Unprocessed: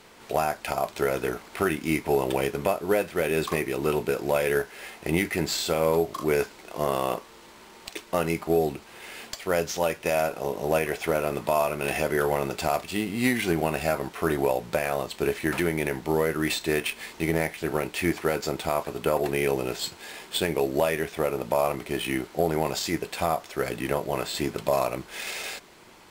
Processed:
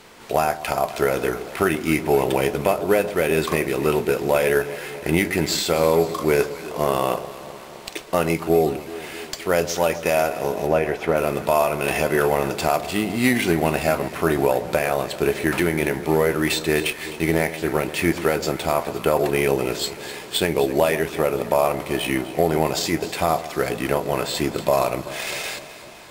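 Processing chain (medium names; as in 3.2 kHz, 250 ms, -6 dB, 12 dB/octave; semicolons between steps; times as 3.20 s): 10.66–11.16 s: low-pass 1.4 kHz -> 2.5 kHz 6 dB/octave; echo whose repeats swap between lows and highs 128 ms, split 1 kHz, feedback 79%, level -13 dB; trim +5 dB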